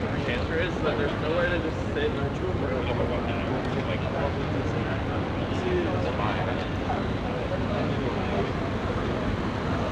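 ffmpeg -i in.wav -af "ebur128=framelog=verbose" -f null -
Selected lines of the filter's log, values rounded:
Integrated loudness:
  I:         -27.6 LUFS
  Threshold: -37.6 LUFS
Loudness range:
  LRA:         1.0 LU
  Threshold: -47.7 LUFS
  LRA low:   -28.0 LUFS
  LRA high:  -27.0 LUFS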